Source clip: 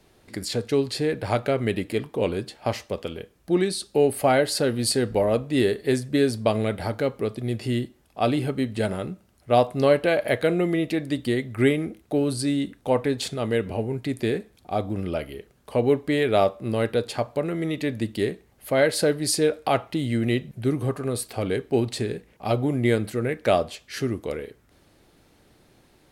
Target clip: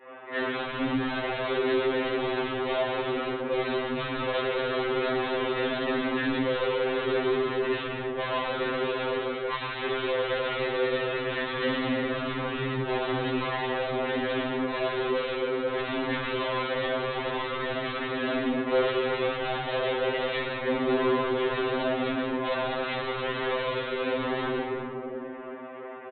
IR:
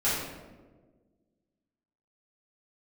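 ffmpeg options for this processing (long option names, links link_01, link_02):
-filter_complex "[0:a]aeval=exprs='if(lt(val(0),0),0.447*val(0),val(0))':channel_layout=same,highpass=frequency=550:width_type=q:width=0.5412,highpass=frequency=550:width_type=q:width=1.307,lowpass=frequency=2800:width_type=q:width=0.5176,lowpass=frequency=2800:width_type=q:width=0.7071,lowpass=frequency=2800:width_type=q:width=1.932,afreqshift=-150,equalizer=frequency=650:width=0.35:gain=12[link_01];[1:a]atrim=start_sample=2205,asetrate=32193,aresample=44100[link_02];[link_01][link_02]afir=irnorm=-1:irlink=0,aresample=8000,asoftclip=type=tanh:threshold=-29.5dB,aresample=44100,afftfilt=real='re*2.45*eq(mod(b,6),0)':imag='im*2.45*eq(mod(b,6),0)':win_size=2048:overlap=0.75,volume=4dB"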